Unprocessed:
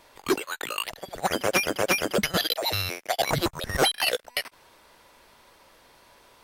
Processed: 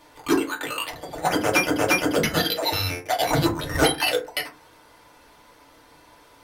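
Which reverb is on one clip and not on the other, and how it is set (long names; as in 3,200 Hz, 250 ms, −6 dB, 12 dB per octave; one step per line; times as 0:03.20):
feedback delay network reverb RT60 0.33 s, low-frequency decay 1.45×, high-frequency decay 0.5×, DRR −2 dB
level −1 dB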